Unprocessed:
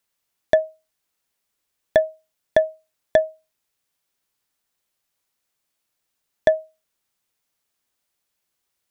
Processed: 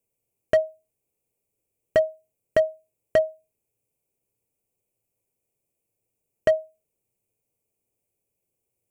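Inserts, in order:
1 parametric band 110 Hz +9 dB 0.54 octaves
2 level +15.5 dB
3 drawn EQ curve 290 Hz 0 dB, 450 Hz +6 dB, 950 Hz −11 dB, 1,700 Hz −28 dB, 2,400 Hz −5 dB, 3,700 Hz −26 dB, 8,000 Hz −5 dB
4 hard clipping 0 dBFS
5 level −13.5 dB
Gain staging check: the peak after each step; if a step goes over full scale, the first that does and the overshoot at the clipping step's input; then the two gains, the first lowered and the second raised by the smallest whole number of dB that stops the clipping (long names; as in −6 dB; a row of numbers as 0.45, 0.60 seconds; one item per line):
−4.0, +11.5, +9.5, 0.0, −13.5 dBFS
step 2, 9.5 dB
step 2 +5.5 dB, step 5 −3.5 dB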